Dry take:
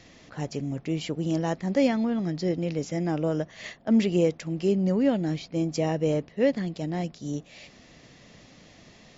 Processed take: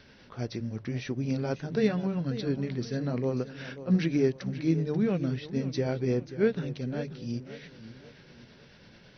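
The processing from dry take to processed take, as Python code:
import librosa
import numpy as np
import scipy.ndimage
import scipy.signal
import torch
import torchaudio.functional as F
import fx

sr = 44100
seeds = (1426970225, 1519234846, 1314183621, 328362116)

y = fx.pitch_heads(x, sr, semitones=-3.5)
y = fx.hum_notches(y, sr, base_hz=50, count=3)
y = fx.echo_warbled(y, sr, ms=539, feedback_pct=40, rate_hz=2.8, cents=96, wet_db=-13.5)
y = F.gain(torch.from_numpy(y), -1.5).numpy()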